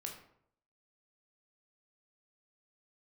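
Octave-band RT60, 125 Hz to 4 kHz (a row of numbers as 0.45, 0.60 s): 0.75, 0.70, 0.70, 0.65, 0.50, 0.40 s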